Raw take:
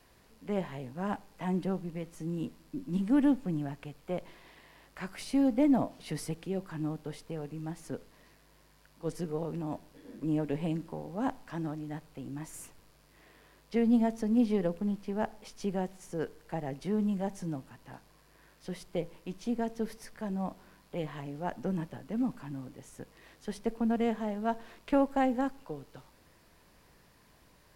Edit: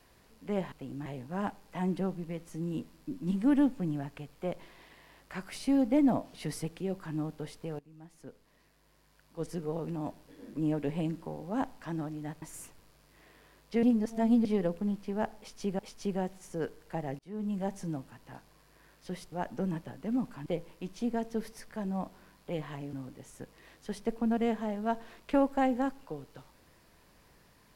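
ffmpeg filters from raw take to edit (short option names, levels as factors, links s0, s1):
-filter_complex "[0:a]asplit=12[s0][s1][s2][s3][s4][s5][s6][s7][s8][s9][s10][s11];[s0]atrim=end=0.722[s12];[s1]atrim=start=12.078:end=12.422[s13];[s2]atrim=start=0.718:end=7.45,asetpts=PTS-STARTPTS,afade=t=out:st=6.728:d=0.004:c=hsin:silence=0.11885[s14];[s3]atrim=start=7.45:end=12.082,asetpts=PTS-STARTPTS,afade=t=in:d=2.03:silence=0.11885[s15];[s4]atrim=start=12.418:end=13.832[s16];[s5]atrim=start=13.828:end=14.452,asetpts=PTS-STARTPTS,areverse[s17];[s6]atrim=start=14.448:end=15.792[s18];[s7]atrim=start=15.378:end=16.78,asetpts=PTS-STARTPTS,afade=t=out:st=1.398:d=0.004:c=hsin[s19];[s8]atrim=start=16.78:end=18.912,asetpts=PTS-STARTPTS,afade=t=in:d=0.45[s20];[s9]atrim=start=21.378:end=22.522[s21];[s10]atrim=start=18.908:end=21.382[s22];[s11]atrim=start=22.518[s23];[s12][s13]acrossfade=d=0.004:c1=hsin:c2=hsin[s24];[s14][s15]concat=n=2:v=0:a=1[s25];[s24][s25]acrossfade=d=0.004:c1=hsin:c2=hsin[s26];[s26][s16]acrossfade=d=0.004:c1=hsin:c2=hsin[s27];[s27][s17]acrossfade=d=0.004:c1=hsin:c2=hsin[s28];[s28][s18]acrossfade=d=0.004:c1=hsin:c2=hsin[s29];[s19][s20]concat=n=2:v=0:a=1[s30];[s29][s30]acrossfade=d=0.004:c1=hsin:c2=hsin[s31];[s31][s21]acrossfade=d=0.004:c1=hsin:c2=hsin[s32];[s32][s22]acrossfade=d=0.004:c1=hsin:c2=hsin[s33];[s33][s23]acrossfade=d=0.004:c1=hsin:c2=hsin"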